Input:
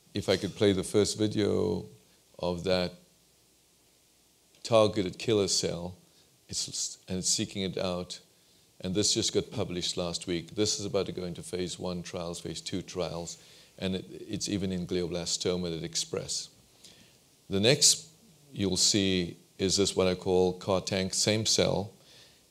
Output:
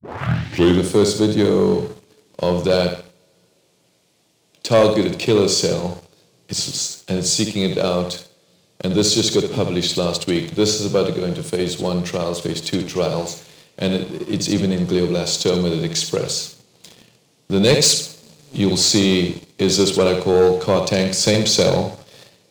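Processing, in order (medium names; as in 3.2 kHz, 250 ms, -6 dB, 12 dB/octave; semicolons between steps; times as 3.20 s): tape start-up on the opening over 0.77 s; in parallel at -3 dB: compression, threshold -38 dBFS, peak gain reduction 19.5 dB; on the sum: high-pass 97 Hz 24 dB/octave; treble shelf 6.2 kHz -8.5 dB; on a send: flutter echo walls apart 11.6 m, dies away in 0.49 s; on the sum: two-slope reverb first 0.34 s, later 4.6 s, from -20 dB, DRR 17 dB; waveshaping leveller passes 2; trim +3.5 dB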